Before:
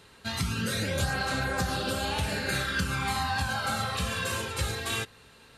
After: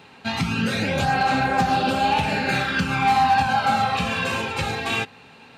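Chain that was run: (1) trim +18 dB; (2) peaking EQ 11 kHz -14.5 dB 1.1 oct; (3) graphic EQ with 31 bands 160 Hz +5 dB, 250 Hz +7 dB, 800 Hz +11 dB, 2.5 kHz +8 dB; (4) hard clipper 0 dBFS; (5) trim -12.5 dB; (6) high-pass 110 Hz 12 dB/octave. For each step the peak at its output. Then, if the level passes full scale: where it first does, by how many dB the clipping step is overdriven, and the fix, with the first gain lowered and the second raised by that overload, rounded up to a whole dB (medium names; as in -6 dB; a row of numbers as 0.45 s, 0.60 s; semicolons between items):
+1.5 dBFS, +0.5 dBFS, +5.0 dBFS, 0.0 dBFS, -12.5 dBFS, -9.5 dBFS; step 1, 5.0 dB; step 1 +13 dB, step 5 -7.5 dB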